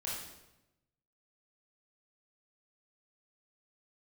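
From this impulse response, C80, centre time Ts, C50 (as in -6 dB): 4.0 dB, 64 ms, 0.5 dB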